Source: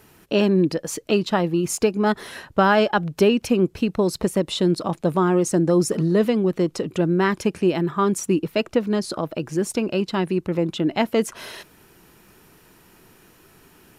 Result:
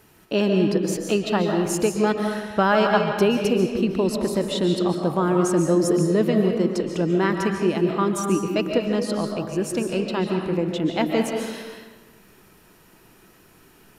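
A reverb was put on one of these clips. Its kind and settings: algorithmic reverb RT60 1.3 s, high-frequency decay 0.7×, pre-delay 100 ms, DRR 2.5 dB; trim -2.5 dB

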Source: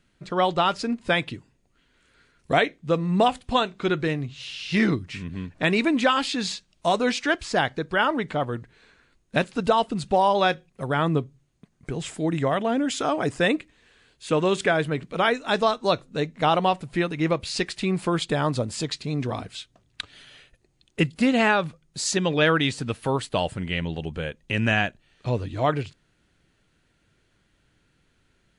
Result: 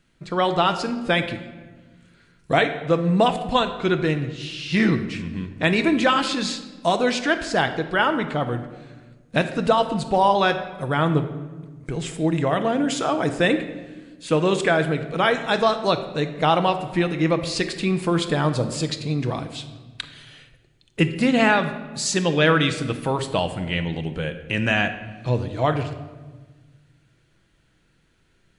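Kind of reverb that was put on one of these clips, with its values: simulated room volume 1100 m³, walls mixed, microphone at 0.67 m; trim +1.5 dB

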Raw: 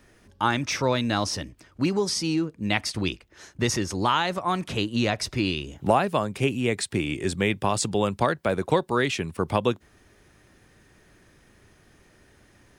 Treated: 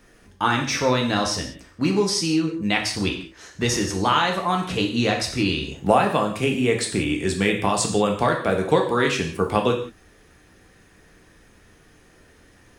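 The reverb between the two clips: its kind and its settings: gated-style reverb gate 210 ms falling, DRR 1 dB; trim +1.5 dB

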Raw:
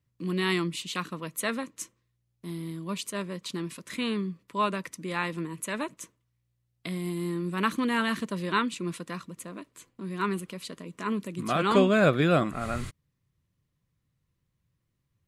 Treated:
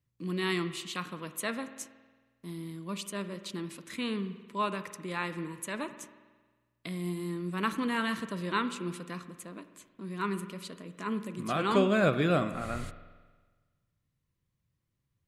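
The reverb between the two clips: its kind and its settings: spring tank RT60 1.4 s, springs 45 ms, chirp 75 ms, DRR 11 dB; trim -4 dB

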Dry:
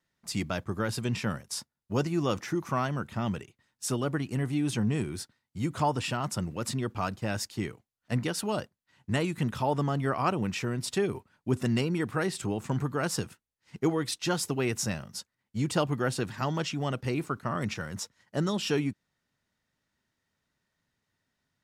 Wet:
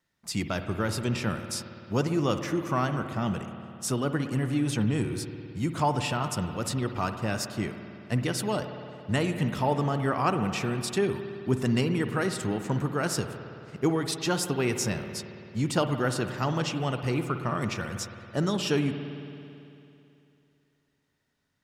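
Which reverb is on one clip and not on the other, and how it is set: spring tank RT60 2.8 s, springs 55 ms, chirp 50 ms, DRR 7.5 dB; trim +1.5 dB

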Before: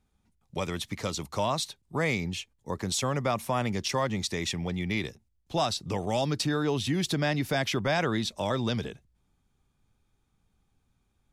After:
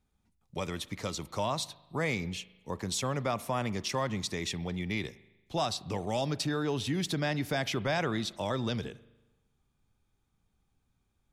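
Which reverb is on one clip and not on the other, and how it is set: spring tank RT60 1.1 s, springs 38 ms, chirp 35 ms, DRR 18 dB; trim -3.5 dB

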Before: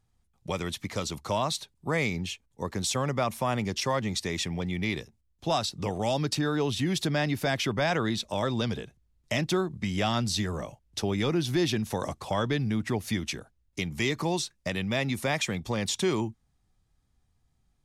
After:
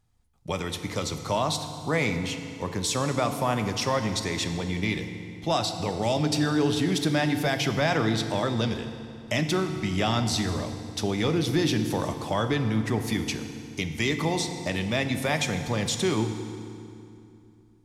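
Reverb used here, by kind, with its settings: FDN reverb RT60 2.6 s, low-frequency decay 1.3×, high-frequency decay 0.8×, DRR 6.5 dB; trim +1.5 dB

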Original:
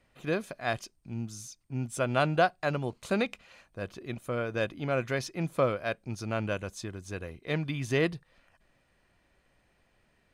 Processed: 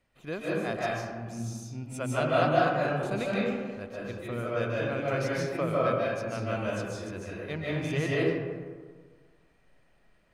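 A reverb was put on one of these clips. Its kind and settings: algorithmic reverb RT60 1.6 s, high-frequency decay 0.4×, pre-delay 110 ms, DRR -6.5 dB; trim -6 dB

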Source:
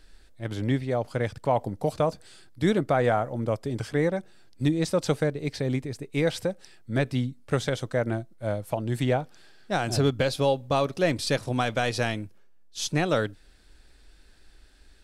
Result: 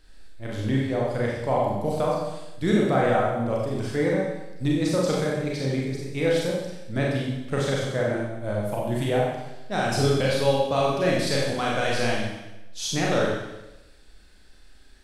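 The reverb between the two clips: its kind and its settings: Schroeder reverb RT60 0.99 s, combs from 30 ms, DRR -4 dB; trim -3 dB

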